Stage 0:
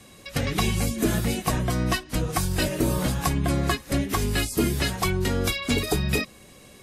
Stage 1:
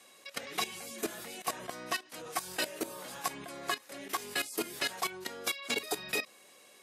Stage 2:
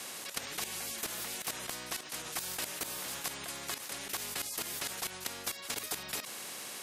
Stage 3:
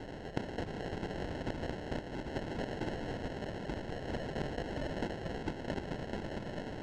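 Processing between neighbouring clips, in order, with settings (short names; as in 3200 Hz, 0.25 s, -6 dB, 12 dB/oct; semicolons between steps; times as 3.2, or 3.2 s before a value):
HPF 500 Hz 12 dB/oct; level quantiser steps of 14 dB; gain -2.5 dB
spectral compressor 4:1
regenerating reverse delay 0.391 s, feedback 44%, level -5 dB; sample-and-hold 37×; air absorption 120 m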